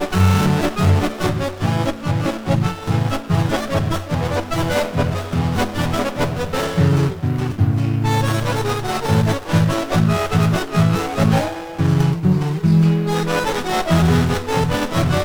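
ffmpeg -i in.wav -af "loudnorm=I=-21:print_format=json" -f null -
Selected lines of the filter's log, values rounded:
"input_i" : "-18.4",
"input_tp" : "-3.3",
"input_lra" : "2.9",
"input_thresh" : "-28.4",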